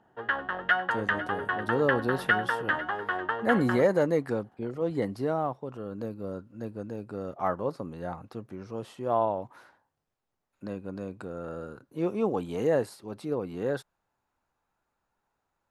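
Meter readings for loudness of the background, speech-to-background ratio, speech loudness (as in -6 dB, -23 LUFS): -29.5 LUFS, -2.0 dB, -31.5 LUFS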